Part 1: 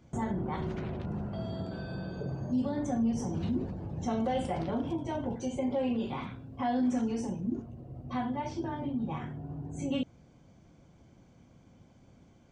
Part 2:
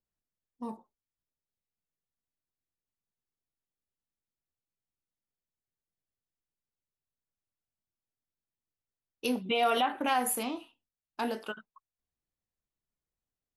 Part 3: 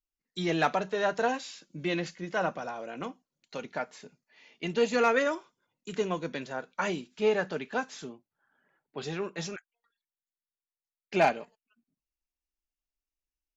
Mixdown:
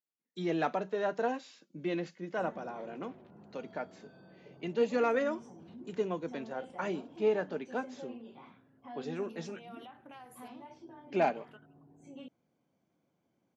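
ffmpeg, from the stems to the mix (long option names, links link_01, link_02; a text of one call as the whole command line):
ffmpeg -i stem1.wav -i stem2.wav -i stem3.wav -filter_complex "[0:a]adelay=2250,volume=-15dB[link_01];[1:a]acompressor=threshold=-30dB:ratio=6,adelay=50,volume=-17dB[link_02];[2:a]tiltshelf=frequency=650:gain=5,volume=-4dB,asplit=2[link_03][link_04];[link_04]apad=whole_len=600514[link_05];[link_02][link_05]sidechaincompress=threshold=-43dB:ratio=8:attack=16:release=190[link_06];[link_01][link_06][link_03]amix=inputs=3:normalize=0,highpass=220,highshelf=frequency=5900:gain=-8" out.wav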